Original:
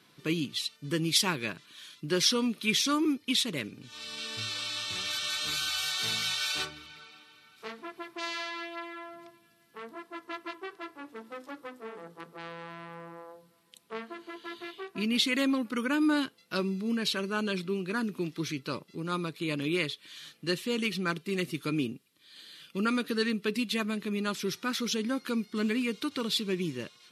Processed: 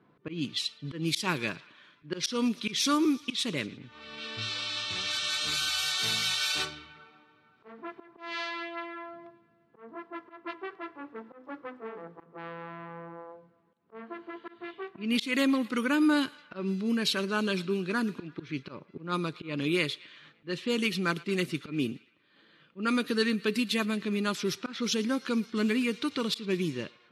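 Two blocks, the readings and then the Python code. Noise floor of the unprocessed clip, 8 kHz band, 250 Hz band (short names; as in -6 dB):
-63 dBFS, -1.5 dB, +1.0 dB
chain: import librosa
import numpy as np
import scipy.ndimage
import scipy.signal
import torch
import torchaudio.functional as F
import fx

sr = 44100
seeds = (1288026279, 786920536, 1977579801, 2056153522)

y = fx.auto_swell(x, sr, attack_ms=164.0)
y = fx.echo_thinned(y, sr, ms=114, feedback_pct=79, hz=860.0, wet_db=-21.0)
y = fx.env_lowpass(y, sr, base_hz=1000.0, full_db=-27.0)
y = y * librosa.db_to_amplitude(2.0)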